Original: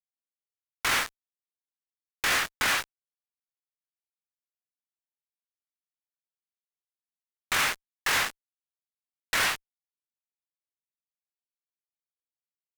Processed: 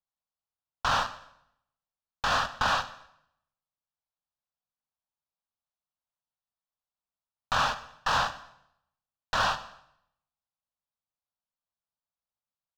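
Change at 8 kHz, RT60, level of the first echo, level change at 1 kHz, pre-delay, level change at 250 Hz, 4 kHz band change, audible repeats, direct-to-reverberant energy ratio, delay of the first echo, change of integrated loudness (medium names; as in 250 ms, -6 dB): -10.0 dB, 0.75 s, -22.5 dB, +5.5 dB, 16 ms, 0.0 dB, -3.0 dB, 2, 11.5 dB, 125 ms, -1.5 dB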